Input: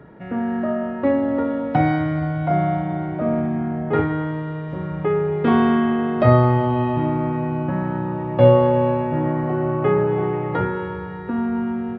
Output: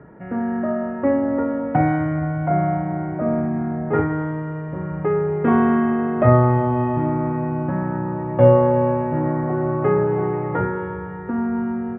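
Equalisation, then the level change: low-pass 2.1 kHz 24 dB/octave; 0.0 dB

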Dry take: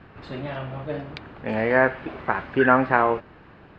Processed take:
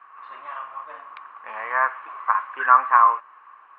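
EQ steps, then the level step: resonant high-pass 1.1 kHz, resonance Q 13; low-pass 2.9 kHz 24 dB/octave; -7.0 dB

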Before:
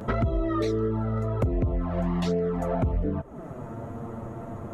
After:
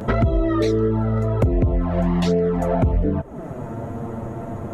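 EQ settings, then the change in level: peaking EQ 1.2 kHz -5 dB 0.28 oct; +7.0 dB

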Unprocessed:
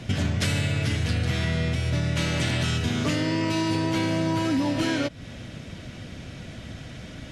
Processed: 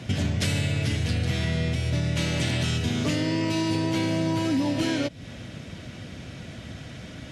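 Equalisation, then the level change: high-pass 57 Hz; dynamic bell 1.3 kHz, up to -5 dB, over -46 dBFS, Q 1.4; 0.0 dB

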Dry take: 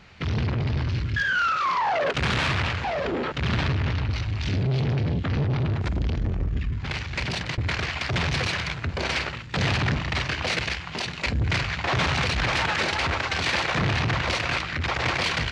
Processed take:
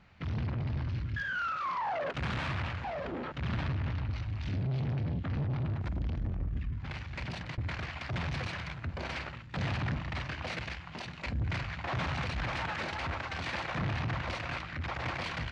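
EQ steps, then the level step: peaking EQ 420 Hz -6.5 dB 0.47 oct; treble shelf 2.6 kHz -10.5 dB; -8.0 dB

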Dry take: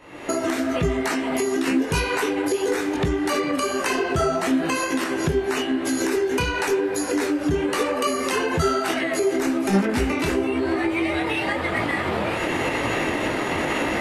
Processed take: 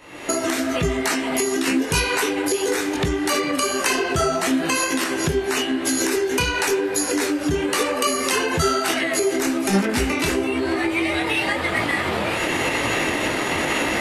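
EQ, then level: treble shelf 2.5 kHz +8.5 dB; 0.0 dB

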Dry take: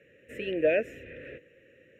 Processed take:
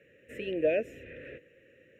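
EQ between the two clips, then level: dynamic bell 1.6 kHz, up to -7 dB, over -45 dBFS, Q 1.1; -1.5 dB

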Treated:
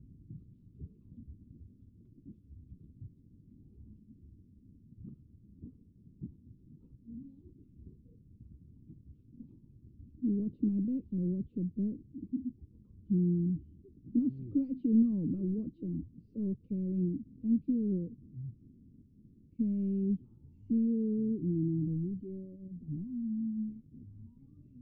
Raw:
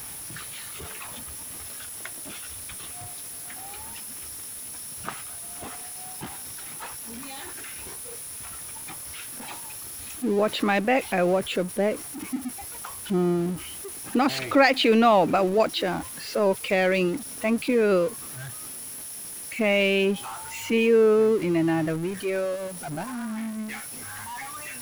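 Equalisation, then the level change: inverse Chebyshev low-pass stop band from 670 Hz, stop band 50 dB; distance through air 140 m; -1.5 dB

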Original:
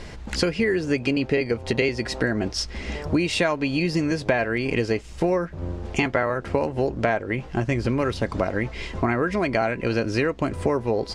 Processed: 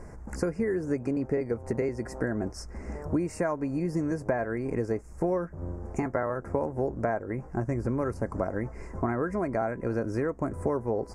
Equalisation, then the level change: Butterworth band-stop 3.4 kHz, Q 0.56; -5.5 dB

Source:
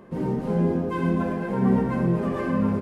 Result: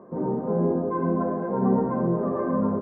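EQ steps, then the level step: high-pass 420 Hz 6 dB/octave; low-pass 1.1 kHz 24 dB/octave; band-stop 840 Hz, Q 12; +5.0 dB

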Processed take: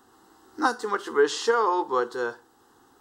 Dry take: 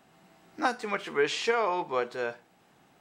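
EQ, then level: static phaser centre 630 Hz, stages 6; +7.0 dB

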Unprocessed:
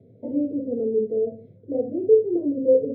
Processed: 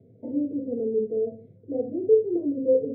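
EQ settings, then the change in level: distance through air 220 m; band-stop 570 Hz, Q 12; -2.0 dB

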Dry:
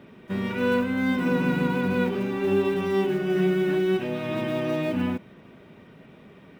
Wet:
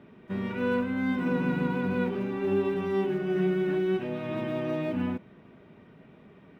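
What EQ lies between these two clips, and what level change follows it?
treble shelf 3.8 kHz -11 dB; band-stop 530 Hz, Q 16; -3.5 dB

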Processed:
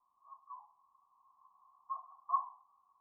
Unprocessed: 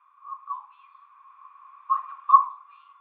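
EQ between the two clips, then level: Gaussian low-pass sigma 17 samples; +13.0 dB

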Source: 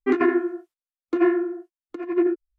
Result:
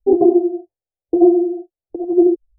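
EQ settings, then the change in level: steep low-pass 860 Hz 72 dB/octave; bass shelf 400 Hz +10.5 dB; static phaser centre 570 Hz, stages 4; +7.0 dB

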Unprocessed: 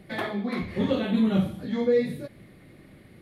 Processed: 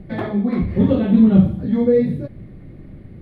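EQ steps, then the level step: tilt EQ -4 dB/octave; +2.0 dB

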